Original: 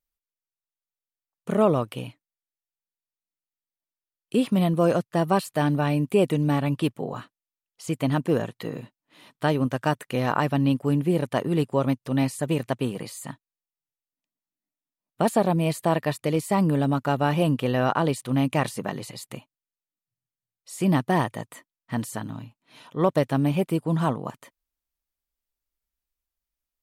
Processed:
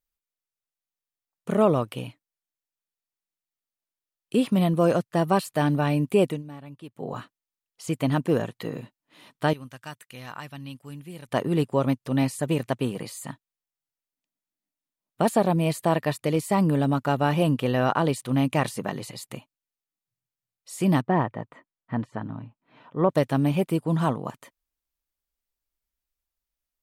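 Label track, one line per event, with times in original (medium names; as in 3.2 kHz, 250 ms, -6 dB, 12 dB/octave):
6.230000	7.110000	dip -18 dB, fades 0.20 s
9.530000	11.290000	amplifier tone stack bass-middle-treble 5-5-5
21.010000	23.100000	low-pass 1.7 kHz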